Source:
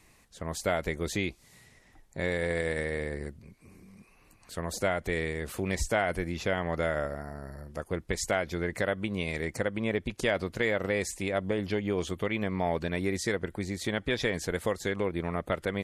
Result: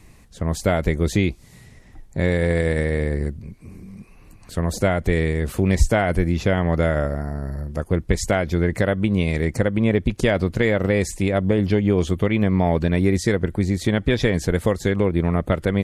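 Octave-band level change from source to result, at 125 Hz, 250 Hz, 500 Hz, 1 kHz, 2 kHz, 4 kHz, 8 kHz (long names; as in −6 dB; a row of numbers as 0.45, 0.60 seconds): +15.5, +12.5, +8.5, +6.5, +5.5, +5.0, +5.0 decibels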